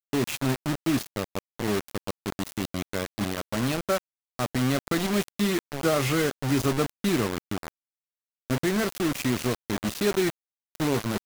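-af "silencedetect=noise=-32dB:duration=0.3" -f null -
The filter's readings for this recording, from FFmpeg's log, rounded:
silence_start: 3.98
silence_end: 4.39 | silence_duration: 0.41
silence_start: 7.68
silence_end: 8.50 | silence_duration: 0.82
silence_start: 10.30
silence_end: 10.75 | silence_duration: 0.45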